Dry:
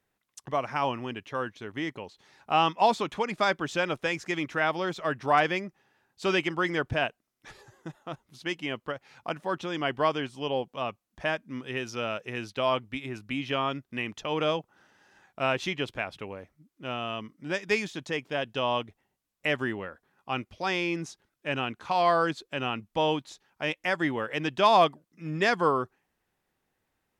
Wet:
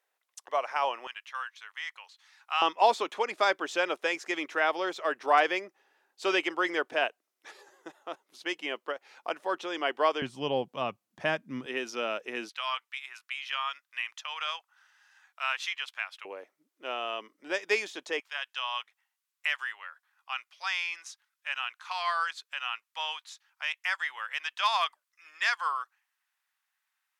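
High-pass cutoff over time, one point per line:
high-pass 24 dB/octave
500 Hz
from 1.07 s 1.1 kHz
from 2.62 s 350 Hz
from 10.22 s 120 Hz
from 11.66 s 260 Hz
from 12.49 s 1.1 kHz
from 16.25 s 370 Hz
from 18.20 s 1.1 kHz

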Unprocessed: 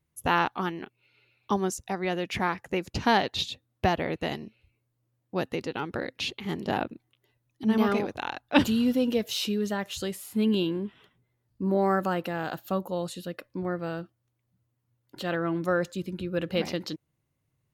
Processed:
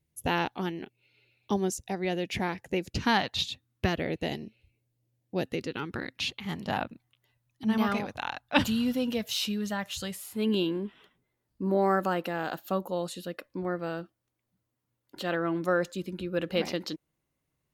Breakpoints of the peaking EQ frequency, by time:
peaking EQ -11 dB 0.82 oct
2.84 s 1.2 kHz
3.32 s 330 Hz
4.15 s 1.2 kHz
5.37 s 1.2 kHz
6.35 s 370 Hz
10.08 s 370 Hz
10.58 s 110 Hz

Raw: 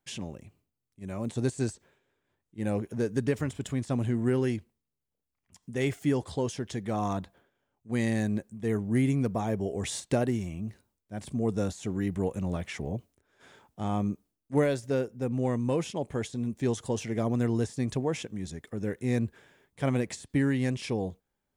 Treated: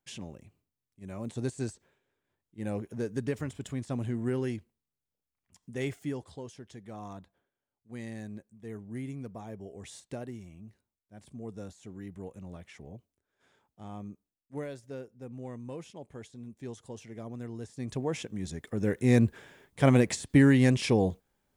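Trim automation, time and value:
5.82 s -4.5 dB
6.43 s -13 dB
17.59 s -13 dB
18.00 s -3 dB
19.20 s +6 dB

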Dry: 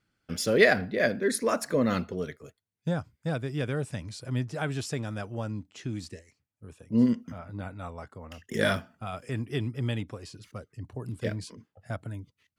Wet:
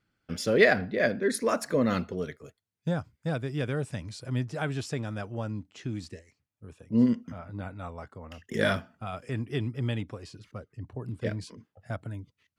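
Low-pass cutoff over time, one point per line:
low-pass 6 dB/octave
4.8 kHz
from 1.34 s 9.6 kHz
from 4.69 s 5.6 kHz
from 10.42 s 2.6 kHz
from 11.26 s 6.1 kHz

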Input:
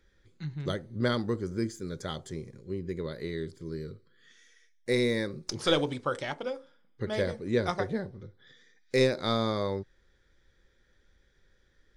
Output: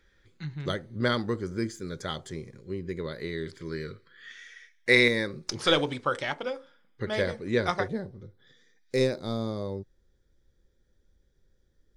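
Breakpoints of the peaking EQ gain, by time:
peaking EQ 2 kHz 2.5 oct
+5 dB
from 3.46 s +15 dB
from 5.08 s +5.5 dB
from 7.88 s -4 dB
from 9.18 s -14 dB

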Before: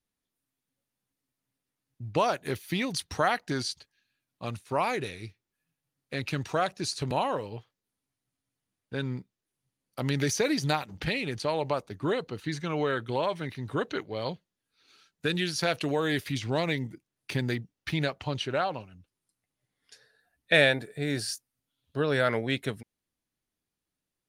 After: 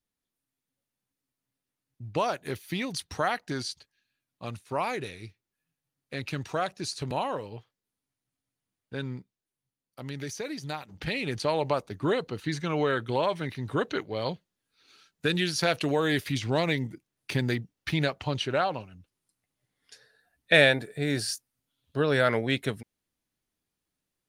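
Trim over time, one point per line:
9.01 s -2 dB
9.99 s -9 dB
10.67 s -9 dB
11.31 s +2 dB

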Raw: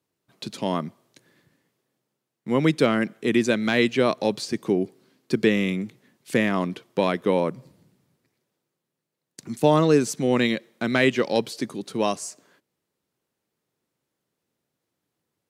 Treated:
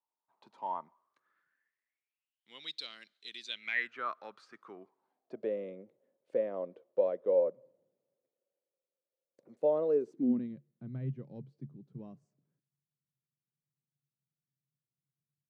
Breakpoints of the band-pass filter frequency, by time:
band-pass filter, Q 8.8
0.87 s 910 Hz
2.74 s 4 kHz
3.43 s 4 kHz
3.95 s 1.3 kHz
4.65 s 1.3 kHz
5.53 s 540 Hz
9.92 s 540 Hz
10.56 s 140 Hz

